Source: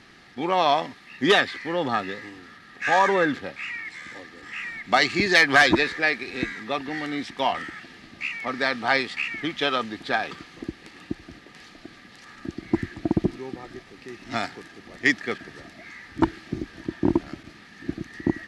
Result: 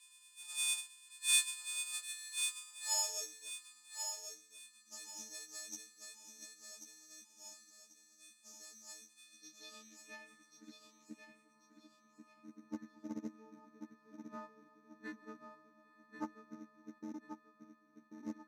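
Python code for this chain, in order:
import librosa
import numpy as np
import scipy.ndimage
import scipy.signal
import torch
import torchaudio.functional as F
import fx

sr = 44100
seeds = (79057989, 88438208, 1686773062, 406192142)

p1 = fx.freq_snap(x, sr, grid_st=6)
p2 = scipy.signal.sosfilt(scipy.signal.butter(2, 160.0, 'highpass', fs=sr, output='sos'), p1)
p3 = fx.bass_treble(p2, sr, bass_db=5, treble_db=-4)
p4 = fx.level_steps(p3, sr, step_db=22, at=(16.98, 18.15))
p5 = fx.filter_sweep_bandpass(p4, sr, from_hz=3900.0, to_hz=240.0, start_s=1.85, end_s=3.74, q=5.3)
p6 = fx.sample_hold(p5, sr, seeds[0], rate_hz=6000.0, jitter_pct=0)
p7 = fx.filter_sweep_bandpass(p6, sr, from_hz=7100.0, to_hz=1100.0, start_s=9.12, end_s=10.9, q=2.7)
p8 = p7 + fx.echo_feedback(p7, sr, ms=1088, feedback_pct=32, wet_db=-7.0, dry=0)
p9 = fx.doppler_dist(p8, sr, depth_ms=0.16)
y = p9 * 10.0 ** (5.5 / 20.0)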